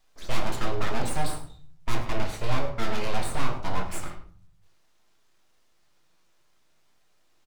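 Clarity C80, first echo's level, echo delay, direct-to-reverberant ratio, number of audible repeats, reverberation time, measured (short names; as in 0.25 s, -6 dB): 11.5 dB, -13.5 dB, 0.103 s, 1.5 dB, 1, 0.50 s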